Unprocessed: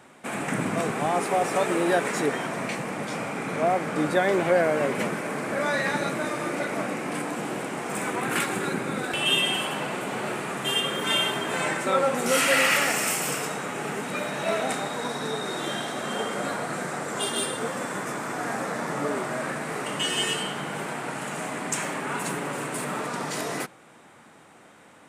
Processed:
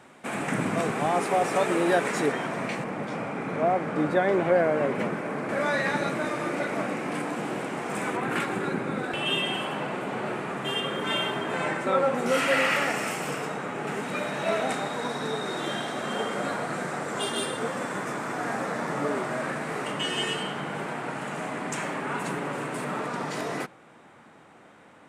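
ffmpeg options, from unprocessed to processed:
-af "asetnsamples=n=441:p=0,asendcmd='2.32 lowpass f 3800;2.84 lowpass f 1700;5.49 lowpass f 4400;8.17 lowpass f 2000;13.87 lowpass f 4800;19.92 lowpass f 2900',lowpass=f=7400:p=1"

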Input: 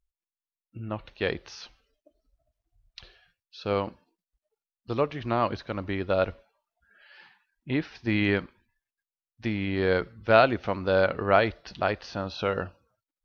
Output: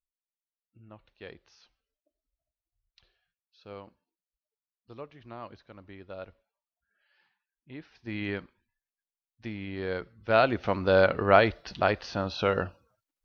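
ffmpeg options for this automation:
-af "volume=1.19,afade=t=in:st=7.74:d=0.54:silence=0.375837,afade=t=in:st=10.18:d=0.57:silence=0.316228"

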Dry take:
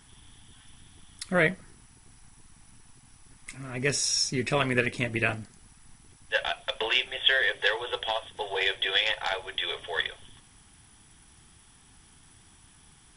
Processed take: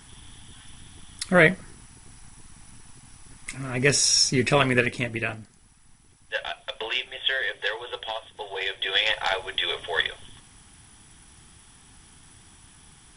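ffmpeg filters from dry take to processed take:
-af "volume=4.73,afade=t=out:st=4.46:d=0.81:silence=0.354813,afade=t=in:st=8.73:d=0.44:silence=0.446684"

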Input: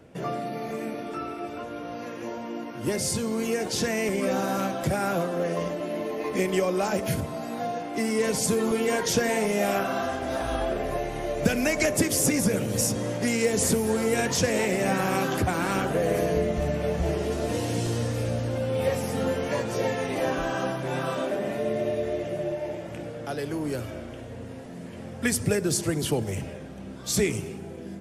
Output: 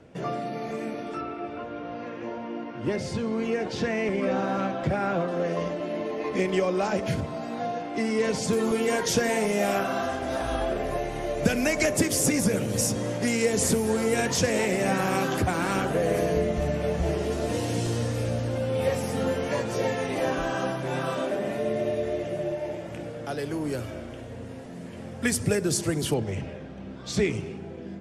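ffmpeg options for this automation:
-af "asetnsamples=n=441:p=0,asendcmd='1.21 lowpass f 3200;5.28 lowpass f 5500;8.53 lowpass f 12000;26.14 lowpass f 4400',lowpass=7800"

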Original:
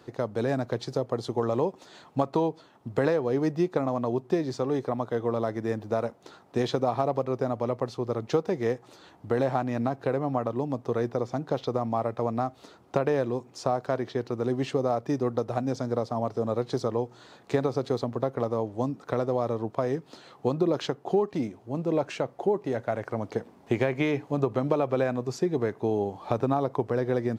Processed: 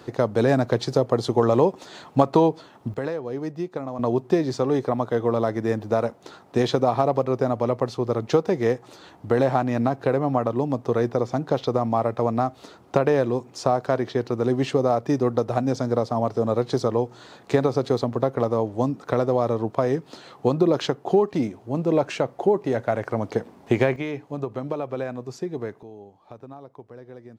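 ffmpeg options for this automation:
-af "asetnsamples=n=441:p=0,asendcmd='2.94 volume volume -4dB;3.99 volume volume 5.5dB;23.96 volume volume -3.5dB;25.83 volume volume -16dB',volume=2.51"

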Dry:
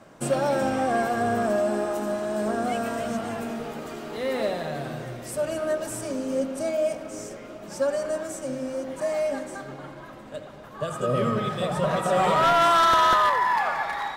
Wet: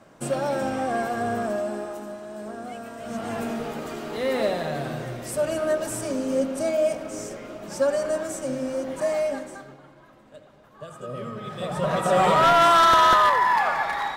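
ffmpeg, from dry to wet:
-af "volume=13.3,afade=t=out:st=1.33:d=0.84:silence=0.421697,afade=t=in:st=2.99:d=0.41:silence=0.251189,afade=t=out:st=9.07:d=0.74:silence=0.237137,afade=t=in:st=11.39:d=0.74:silence=0.237137"

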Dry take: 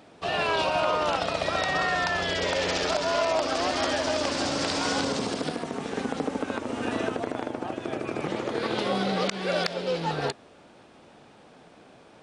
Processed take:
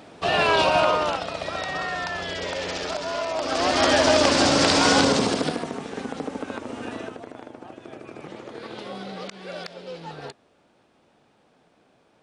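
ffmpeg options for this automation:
-af "volume=7.94,afade=t=out:st=0.79:d=0.44:silence=0.354813,afade=t=in:st=3.35:d=0.66:silence=0.251189,afade=t=out:st=5.02:d=0.85:silence=0.281838,afade=t=out:st=6.66:d=0.55:silence=0.446684"

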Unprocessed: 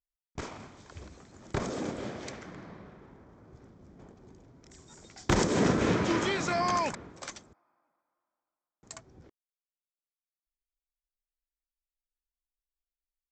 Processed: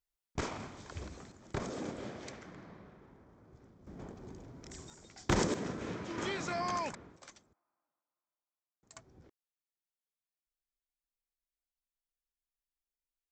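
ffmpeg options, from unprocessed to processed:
-af "asetnsamples=n=441:p=0,asendcmd='1.32 volume volume -5.5dB;3.87 volume volume 5dB;4.9 volume volume -4dB;5.54 volume volume -14dB;6.18 volume volume -7dB;7.16 volume volume -13dB;8.96 volume volume -5dB',volume=1.33"

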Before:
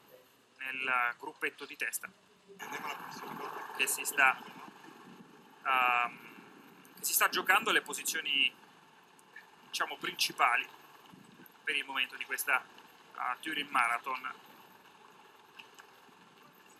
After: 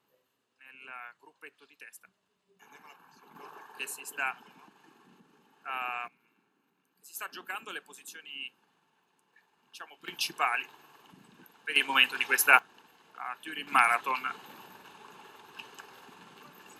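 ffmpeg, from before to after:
-af "asetnsamples=n=441:p=0,asendcmd='3.35 volume volume -7dB;6.08 volume volume -19dB;7.15 volume volume -12dB;10.08 volume volume -1dB;11.76 volume volume 10dB;12.59 volume volume -3dB;13.67 volume volume 6dB',volume=0.2"

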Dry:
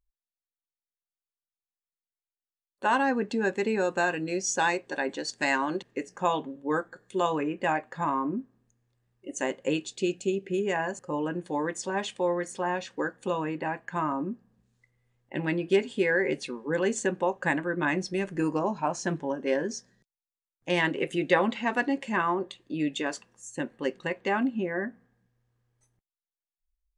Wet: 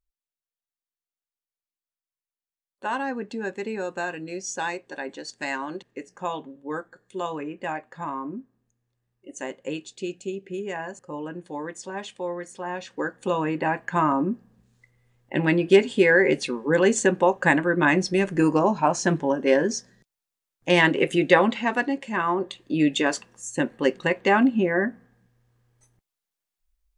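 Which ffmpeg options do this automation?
-af "volume=6.31,afade=t=in:st=12.63:d=1.16:silence=0.281838,afade=t=out:st=21.07:d=1.02:silence=0.398107,afade=t=in:st=22.09:d=0.69:silence=0.375837"

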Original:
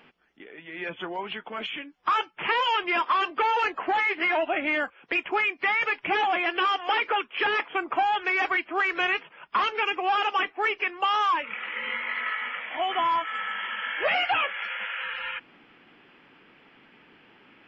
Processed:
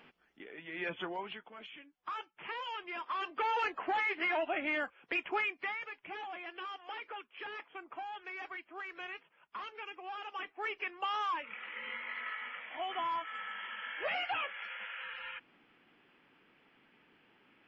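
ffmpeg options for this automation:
-af "volume=4.22,afade=t=out:st=0.96:d=0.55:silence=0.237137,afade=t=in:st=3:d=0.55:silence=0.375837,afade=t=out:st=5.39:d=0.47:silence=0.281838,afade=t=in:st=10.26:d=0.51:silence=0.398107"

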